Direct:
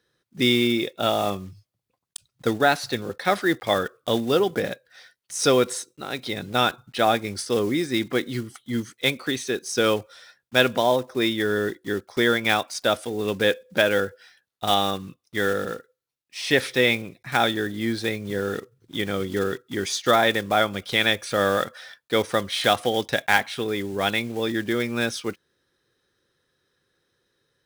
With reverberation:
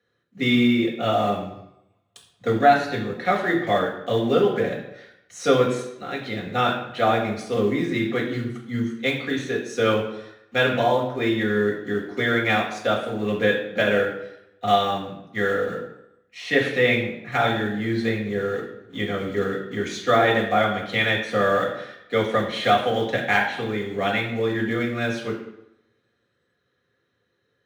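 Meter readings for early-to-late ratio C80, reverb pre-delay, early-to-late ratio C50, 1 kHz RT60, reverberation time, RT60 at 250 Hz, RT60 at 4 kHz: 9.0 dB, 3 ms, 6.0 dB, 0.85 s, 0.85 s, 0.75 s, 0.65 s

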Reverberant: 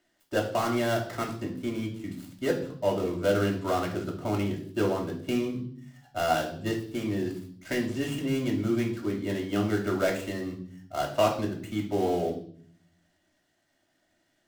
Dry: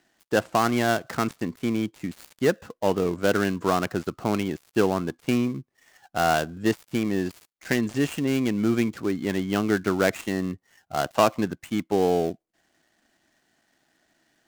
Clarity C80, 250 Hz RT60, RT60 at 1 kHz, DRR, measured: 12.0 dB, 0.90 s, 0.50 s, -2.0 dB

